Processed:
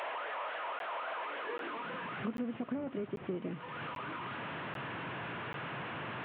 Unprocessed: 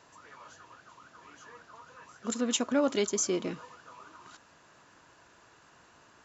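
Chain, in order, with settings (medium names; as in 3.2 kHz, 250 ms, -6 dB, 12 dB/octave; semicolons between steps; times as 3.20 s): one-bit delta coder 16 kbps, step -42.5 dBFS; compression 6:1, threshold -45 dBFS, peak gain reduction 18 dB; high-pass sweep 630 Hz -> 130 Hz, 1.20–2.26 s; crackling interface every 0.79 s, samples 512, zero, from 0.79 s; trim +7.5 dB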